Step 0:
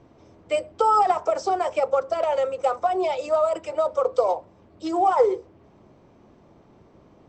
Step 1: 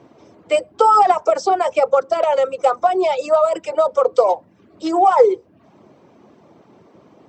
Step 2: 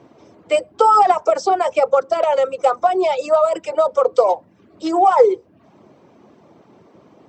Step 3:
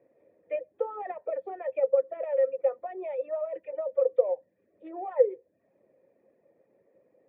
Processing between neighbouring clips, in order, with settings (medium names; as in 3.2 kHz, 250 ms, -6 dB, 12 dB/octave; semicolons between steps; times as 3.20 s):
high-pass 160 Hz 12 dB/octave; reverb removal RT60 0.52 s; trim +7 dB
no audible change
cascade formant filter e; trim -6 dB